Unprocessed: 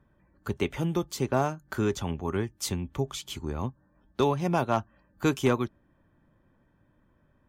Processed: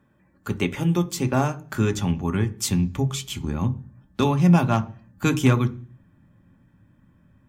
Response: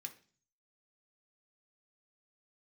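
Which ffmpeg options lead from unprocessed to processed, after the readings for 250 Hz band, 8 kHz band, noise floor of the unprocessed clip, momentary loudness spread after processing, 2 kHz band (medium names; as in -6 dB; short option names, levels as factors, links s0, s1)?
+8.0 dB, +7.0 dB, -67 dBFS, 12 LU, +5.5 dB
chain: -filter_complex "[0:a]asubboost=boost=3.5:cutoff=200,asplit=2[s0][s1];[1:a]atrim=start_sample=2205,afade=t=out:st=0.42:d=0.01,atrim=end_sample=18963,lowshelf=f=210:g=8[s2];[s1][s2]afir=irnorm=-1:irlink=0,volume=1.68[s3];[s0][s3]amix=inputs=2:normalize=0"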